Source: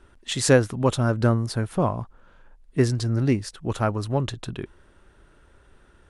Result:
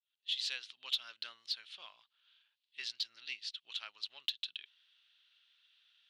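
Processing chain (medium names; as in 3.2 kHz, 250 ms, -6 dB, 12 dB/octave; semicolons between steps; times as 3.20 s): fade-in on the opening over 0.85 s; Butterworth band-pass 3.5 kHz, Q 2.3; Chebyshev shaper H 4 -40 dB, 5 -23 dB, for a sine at -20 dBFS; trim +2 dB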